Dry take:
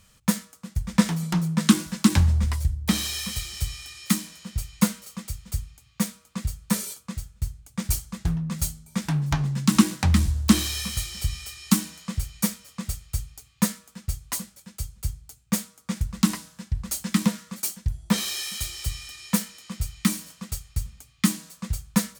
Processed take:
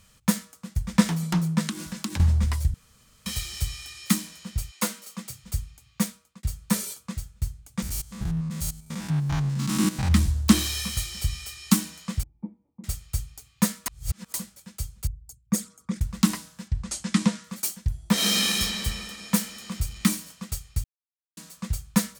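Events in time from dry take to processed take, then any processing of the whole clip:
0:01.63–0:02.20: downward compressor, threshold −28 dBFS
0:02.74–0:03.26: fill with room tone
0:04.70–0:05.43: high-pass filter 340 Hz → 110 Hz 24 dB per octave
0:06.03–0:06.43: fade out
0:07.82–0:10.12: spectrum averaged block by block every 100 ms
0:12.23–0:12.84: formant resonators in series u
0:13.86–0:14.34: reverse
0:15.07–0:16.01: spectral envelope exaggerated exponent 2
0:16.68–0:17.44: low-pass filter 8,900 Hz 24 dB per octave
0:18.13–0:18.56: thrown reverb, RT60 3 s, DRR −8 dB
0:19.36–0:20.15: mu-law and A-law mismatch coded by mu
0:20.84–0:21.37: silence

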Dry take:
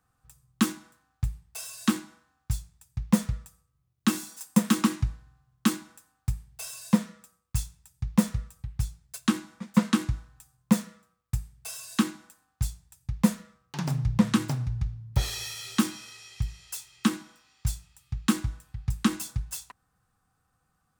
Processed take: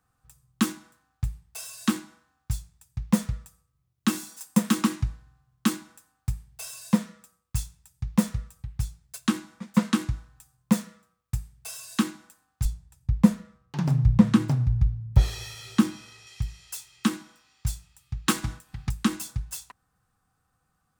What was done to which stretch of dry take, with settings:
0:12.65–0:16.27: spectral tilt −2 dB per octave
0:18.26–0:18.89: ceiling on every frequency bin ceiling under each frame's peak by 13 dB

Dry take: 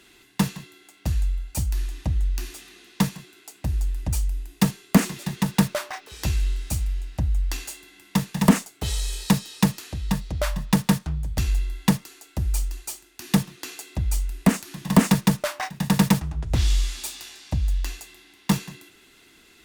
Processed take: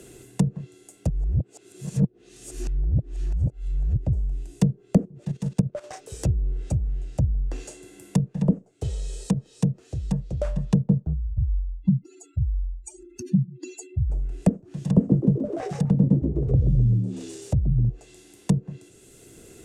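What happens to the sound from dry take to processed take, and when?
0:01.09–0:03.96: reverse
0:05.05–0:05.84: output level in coarse steps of 15 dB
0:08.28–0:10.45: flanger 1.8 Hz, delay 2.4 ms, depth 4.8 ms, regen −53%
0:11.13–0:14.10: expanding power law on the bin magnitudes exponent 3.2
0:14.85–0:17.89: echo with shifted repeats 127 ms, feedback 46%, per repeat +71 Hz, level −6.5 dB
whole clip: graphic EQ with 10 bands 125 Hz +10 dB, 250 Hz −3 dB, 500 Hz +10 dB, 1,000 Hz −11 dB, 2,000 Hz −9 dB, 4,000 Hz −8 dB, 8,000 Hz +11 dB; treble cut that deepens with the level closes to 440 Hz, closed at −15.5 dBFS; multiband upward and downward compressor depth 40%; level −2.5 dB

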